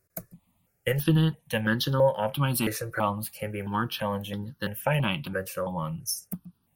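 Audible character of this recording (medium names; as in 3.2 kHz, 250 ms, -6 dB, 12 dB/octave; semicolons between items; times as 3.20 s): notches that jump at a steady rate 3 Hz 870–2400 Hz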